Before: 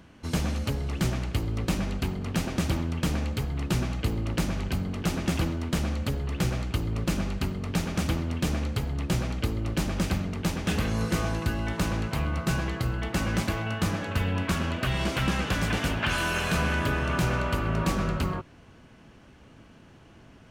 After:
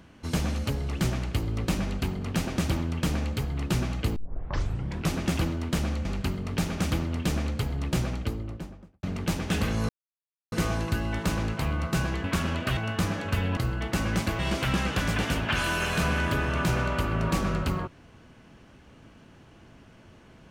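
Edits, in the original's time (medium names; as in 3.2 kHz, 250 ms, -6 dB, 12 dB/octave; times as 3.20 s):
4.16 s: tape start 0.97 s
6.05–7.22 s: delete
9.11–10.20 s: studio fade out
11.06 s: insert silence 0.63 s
12.78–13.60 s: swap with 14.40–14.93 s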